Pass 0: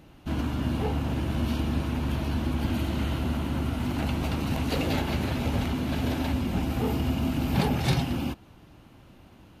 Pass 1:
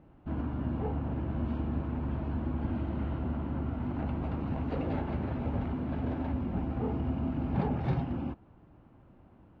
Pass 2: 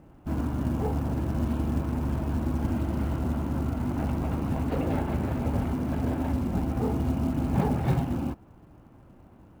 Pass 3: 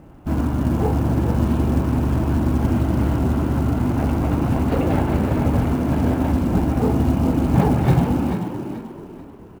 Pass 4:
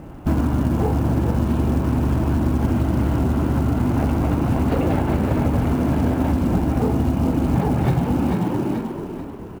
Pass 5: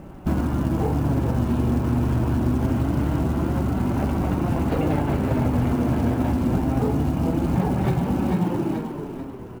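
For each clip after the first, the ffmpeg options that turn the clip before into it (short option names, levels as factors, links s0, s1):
-af "lowpass=1300,volume=0.562"
-af "acrusher=bits=7:mode=log:mix=0:aa=0.000001,volume=1.78"
-filter_complex "[0:a]asplit=5[s0][s1][s2][s3][s4];[s1]adelay=436,afreqshift=48,volume=0.398[s5];[s2]adelay=872,afreqshift=96,volume=0.135[s6];[s3]adelay=1308,afreqshift=144,volume=0.0462[s7];[s4]adelay=1744,afreqshift=192,volume=0.0157[s8];[s0][s5][s6][s7][s8]amix=inputs=5:normalize=0,volume=2.51"
-af "acompressor=threshold=0.0708:ratio=6,volume=2.24"
-af "flanger=delay=5.2:depth=3.3:regen=62:speed=0.25:shape=sinusoidal,volume=1.26"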